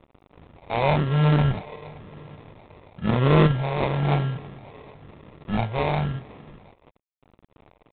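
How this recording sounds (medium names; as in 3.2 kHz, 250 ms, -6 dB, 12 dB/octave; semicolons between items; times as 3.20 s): a quantiser's noise floor 8-bit, dither none; phasing stages 4, 0.99 Hz, lowest notch 200–1600 Hz; aliases and images of a low sample rate 1.5 kHz, jitter 0%; IMA ADPCM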